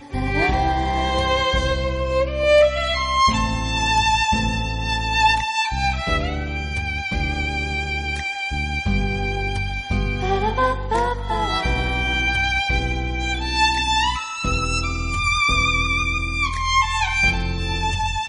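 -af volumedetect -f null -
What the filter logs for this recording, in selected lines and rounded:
mean_volume: -20.7 dB
max_volume: -5.9 dB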